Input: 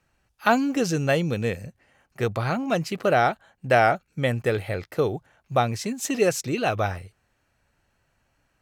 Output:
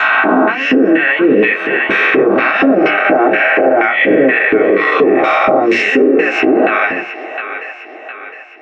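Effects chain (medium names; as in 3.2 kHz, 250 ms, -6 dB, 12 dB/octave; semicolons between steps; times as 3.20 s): reverse spectral sustain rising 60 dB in 1.94 s; frequency weighting A; LFO band-pass square 2.1 Hz 320–2400 Hz; hum notches 60/120/180/240/300/360/420 Hz; gate with hold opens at -35 dBFS; feedback echo behind a band-pass 710 ms, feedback 48%, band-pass 1.4 kHz, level -16.5 dB; compression, threshold -31 dBFS, peak gain reduction 8.5 dB; low-pass that closes with the level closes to 2.2 kHz, closed at -31 dBFS; treble shelf 5.9 kHz +7 dB; reverberation RT60 0.15 s, pre-delay 3 ms, DRR -1.5 dB; gain riding within 4 dB 0.5 s; loudness maximiser +17 dB; trim -1 dB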